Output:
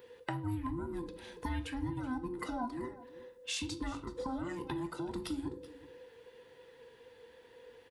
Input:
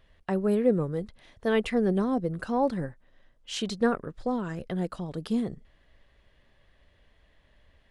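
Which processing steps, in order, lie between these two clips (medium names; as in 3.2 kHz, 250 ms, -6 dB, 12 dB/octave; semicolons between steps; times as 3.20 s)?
every band turned upside down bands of 500 Hz; high-pass 47 Hz; treble shelf 8 kHz +9.5 dB; compression 10:1, threshold -38 dBFS, peak gain reduction 18.5 dB; delay 378 ms -18 dB; on a send at -8.5 dB: reverberation RT60 0.45 s, pre-delay 8 ms; on the sum: trim +2.5 dB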